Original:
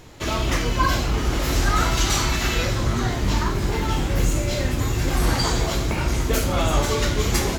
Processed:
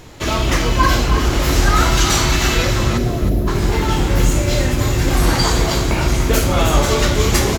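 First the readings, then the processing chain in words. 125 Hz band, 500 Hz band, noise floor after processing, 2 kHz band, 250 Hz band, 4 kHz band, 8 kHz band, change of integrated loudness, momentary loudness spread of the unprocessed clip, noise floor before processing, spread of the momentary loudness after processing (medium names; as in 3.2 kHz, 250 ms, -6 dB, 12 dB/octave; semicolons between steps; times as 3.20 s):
+6.0 dB, +6.5 dB, -19 dBFS, +6.0 dB, +6.5 dB, +6.0 dB, +6.0 dB, +6.0 dB, 3 LU, -25 dBFS, 4 LU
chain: time-frequency box 2.98–3.48 s, 740–10000 Hz -24 dB; feedback delay 314 ms, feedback 25%, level -9 dB; trim +5.5 dB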